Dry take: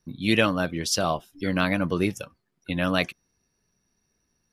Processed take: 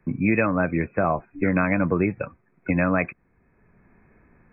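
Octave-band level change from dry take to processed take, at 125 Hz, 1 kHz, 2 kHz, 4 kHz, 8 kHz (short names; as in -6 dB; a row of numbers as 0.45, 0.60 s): +3.5 dB, +2.5 dB, +1.5 dB, under -40 dB, under -40 dB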